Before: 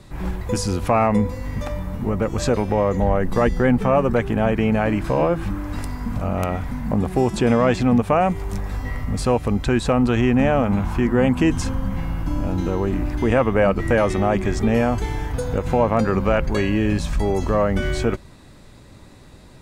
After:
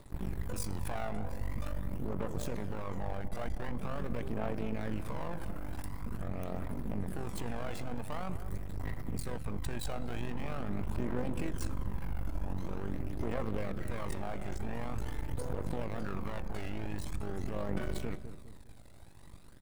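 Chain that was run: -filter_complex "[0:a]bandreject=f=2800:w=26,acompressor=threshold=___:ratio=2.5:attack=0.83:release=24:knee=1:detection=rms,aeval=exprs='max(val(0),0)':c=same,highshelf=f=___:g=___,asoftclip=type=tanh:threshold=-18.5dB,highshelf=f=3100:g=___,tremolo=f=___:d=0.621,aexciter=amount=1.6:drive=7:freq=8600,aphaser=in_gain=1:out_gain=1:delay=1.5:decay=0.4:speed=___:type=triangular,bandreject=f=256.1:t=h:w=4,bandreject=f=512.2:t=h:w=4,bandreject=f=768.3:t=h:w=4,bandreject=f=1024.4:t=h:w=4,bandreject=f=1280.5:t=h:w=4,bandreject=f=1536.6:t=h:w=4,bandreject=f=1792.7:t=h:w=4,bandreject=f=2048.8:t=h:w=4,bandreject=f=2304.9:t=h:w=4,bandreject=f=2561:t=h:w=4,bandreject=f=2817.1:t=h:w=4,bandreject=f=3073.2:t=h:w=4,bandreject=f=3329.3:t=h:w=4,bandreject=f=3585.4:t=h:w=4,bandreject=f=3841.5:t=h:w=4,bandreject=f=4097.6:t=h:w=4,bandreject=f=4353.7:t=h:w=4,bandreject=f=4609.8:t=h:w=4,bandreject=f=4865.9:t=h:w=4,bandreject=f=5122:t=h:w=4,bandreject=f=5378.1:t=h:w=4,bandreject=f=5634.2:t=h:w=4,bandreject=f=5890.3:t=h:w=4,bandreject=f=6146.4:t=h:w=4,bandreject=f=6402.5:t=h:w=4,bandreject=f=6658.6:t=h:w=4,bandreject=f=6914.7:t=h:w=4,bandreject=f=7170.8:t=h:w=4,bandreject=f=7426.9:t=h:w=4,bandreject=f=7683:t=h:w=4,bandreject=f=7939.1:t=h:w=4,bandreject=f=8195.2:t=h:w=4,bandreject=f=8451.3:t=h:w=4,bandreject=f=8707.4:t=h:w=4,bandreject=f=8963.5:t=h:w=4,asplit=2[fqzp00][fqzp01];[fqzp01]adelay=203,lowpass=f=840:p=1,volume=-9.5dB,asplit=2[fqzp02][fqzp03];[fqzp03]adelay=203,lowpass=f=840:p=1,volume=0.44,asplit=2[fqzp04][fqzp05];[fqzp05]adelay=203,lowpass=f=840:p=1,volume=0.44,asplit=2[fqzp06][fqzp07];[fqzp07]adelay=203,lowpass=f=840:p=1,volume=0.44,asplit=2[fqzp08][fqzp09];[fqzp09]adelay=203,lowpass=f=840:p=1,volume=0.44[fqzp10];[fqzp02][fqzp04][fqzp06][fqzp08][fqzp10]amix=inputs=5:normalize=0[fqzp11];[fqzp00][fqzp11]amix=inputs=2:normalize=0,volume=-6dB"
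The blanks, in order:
-23dB, 8100, 5.5, -4, 48, 0.45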